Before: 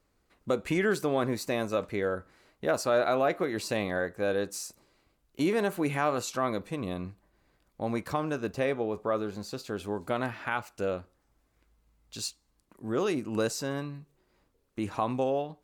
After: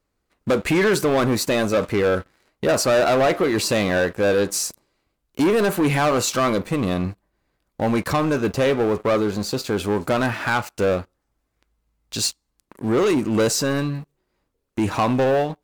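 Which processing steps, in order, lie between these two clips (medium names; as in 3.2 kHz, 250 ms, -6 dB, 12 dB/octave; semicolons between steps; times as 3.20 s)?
waveshaping leveller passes 3; trim +3 dB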